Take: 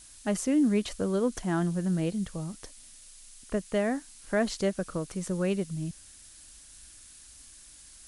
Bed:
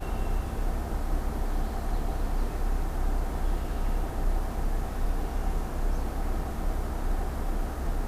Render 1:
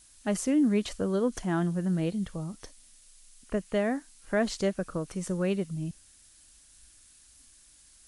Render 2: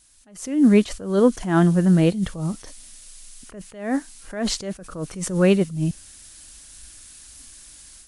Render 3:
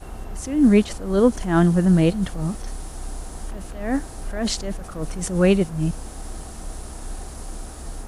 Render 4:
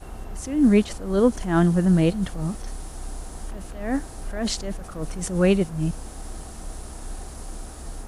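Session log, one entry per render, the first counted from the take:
noise print and reduce 6 dB
level rider gain up to 12.5 dB; attacks held to a fixed rise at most 110 dB/s
add bed -4.5 dB
trim -2 dB

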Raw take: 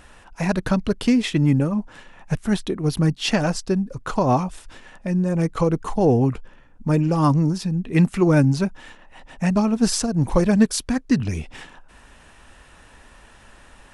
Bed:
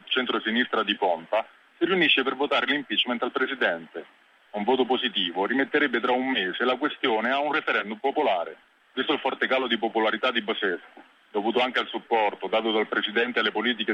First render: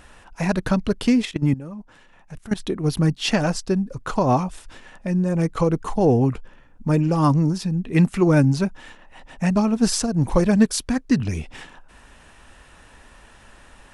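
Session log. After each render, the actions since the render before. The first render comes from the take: 1.25–2.60 s: level held to a coarse grid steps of 17 dB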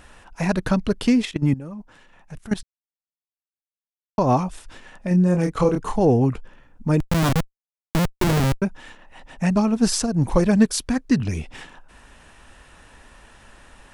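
2.63–4.18 s: mute; 5.08–6.00 s: doubling 28 ms -4 dB; 7.00–8.62 s: Schmitt trigger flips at -16.5 dBFS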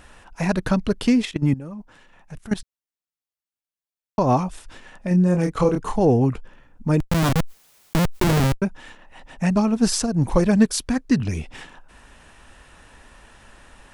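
7.39–8.47 s: level flattener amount 70%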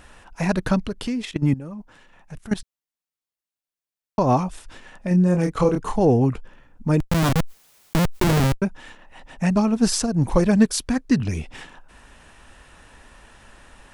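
0.86–1.31 s: compression 2:1, threshold -29 dBFS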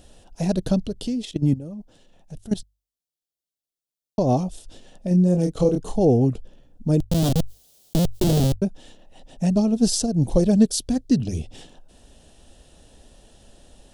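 high-order bell 1.5 kHz -15.5 dB; hum notches 50/100 Hz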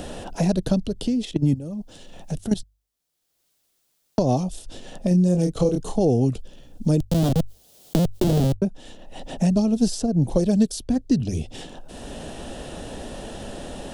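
three bands compressed up and down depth 70%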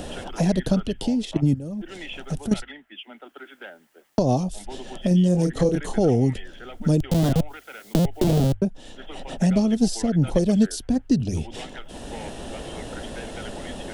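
add bed -17 dB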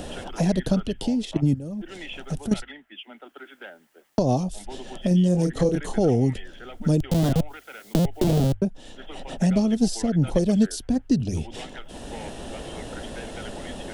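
trim -1 dB

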